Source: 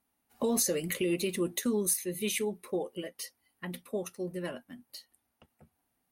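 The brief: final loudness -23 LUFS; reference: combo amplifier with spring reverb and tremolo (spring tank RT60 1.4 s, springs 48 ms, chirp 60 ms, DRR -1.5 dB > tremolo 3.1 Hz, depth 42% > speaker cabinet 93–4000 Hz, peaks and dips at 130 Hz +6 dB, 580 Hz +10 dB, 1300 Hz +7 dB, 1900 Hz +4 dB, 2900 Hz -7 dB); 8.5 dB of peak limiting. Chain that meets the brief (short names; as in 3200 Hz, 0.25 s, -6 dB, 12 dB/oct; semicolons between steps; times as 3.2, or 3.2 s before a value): limiter -25.5 dBFS; spring tank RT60 1.4 s, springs 48 ms, chirp 60 ms, DRR -1.5 dB; tremolo 3.1 Hz, depth 42%; speaker cabinet 93–4000 Hz, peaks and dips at 130 Hz +6 dB, 580 Hz +10 dB, 1300 Hz +7 dB, 1900 Hz +4 dB, 2900 Hz -7 dB; gain +11 dB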